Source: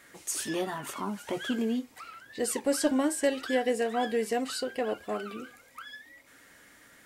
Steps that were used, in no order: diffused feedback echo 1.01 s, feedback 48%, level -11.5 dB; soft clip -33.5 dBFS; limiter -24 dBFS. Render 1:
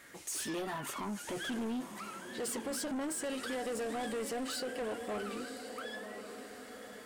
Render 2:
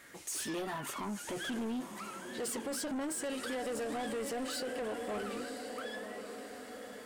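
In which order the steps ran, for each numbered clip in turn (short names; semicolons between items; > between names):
limiter > diffused feedback echo > soft clip; diffused feedback echo > limiter > soft clip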